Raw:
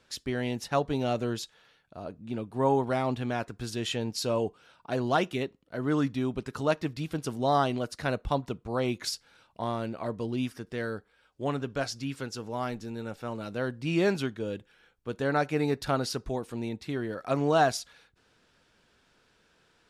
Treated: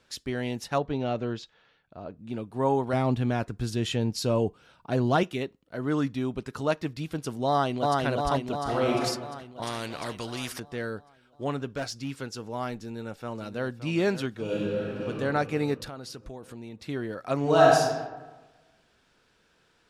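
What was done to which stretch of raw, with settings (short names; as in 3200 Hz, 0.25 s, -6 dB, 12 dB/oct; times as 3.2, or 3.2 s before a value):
0.78–2.19 air absorption 150 m
2.93–5.23 low shelf 280 Hz +9 dB
7.47–8.03 echo throw 0.35 s, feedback 65%, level -1 dB
8.62–9.03 reverb throw, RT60 1 s, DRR -1 dB
9.62–10.6 spectral compressor 2:1
11.71–12.17 hard clip -27 dBFS
12.79–13.9 echo throw 0.57 s, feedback 65%, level -12 dB
14.43–15.08 reverb throw, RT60 2.9 s, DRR -8 dB
15.84–16.84 compressor 4:1, threshold -38 dBFS
17.4–17.8 reverb throw, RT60 1.2 s, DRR -2.5 dB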